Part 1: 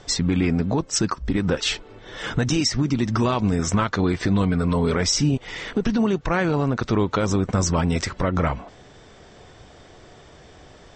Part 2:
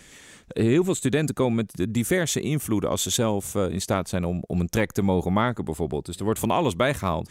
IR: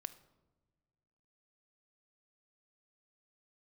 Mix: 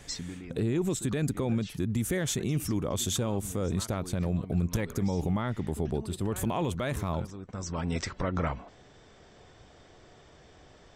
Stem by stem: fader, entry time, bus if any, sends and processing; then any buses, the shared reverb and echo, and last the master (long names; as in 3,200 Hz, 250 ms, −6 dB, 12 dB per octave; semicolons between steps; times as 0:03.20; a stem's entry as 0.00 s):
−8.0 dB, 0.00 s, no send, automatic ducking −15 dB, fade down 0.40 s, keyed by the second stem
−5.0 dB, 0.00 s, no send, low-shelf EQ 160 Hz +9 dB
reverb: not used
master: brickwall limiter −19.5 dBFS, peak gain reduction 8.5 dB